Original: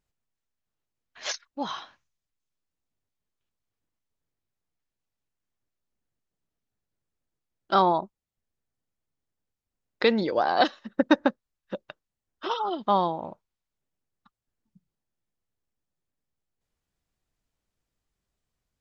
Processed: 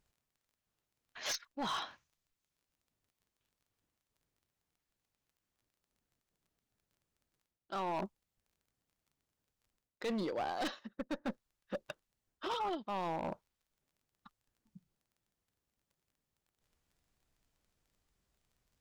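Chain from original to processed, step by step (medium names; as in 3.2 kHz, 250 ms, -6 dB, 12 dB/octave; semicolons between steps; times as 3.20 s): single-diode clipper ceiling -13.5 dBFS; crackle 22 per s -63 dBFS; reverse; compression 16:1, threshold -34 dBFS, peak gain reduction 20.5 dB; reverse; hard clipper -35 dBFS, distortion -11 dB; trim +2.5 dB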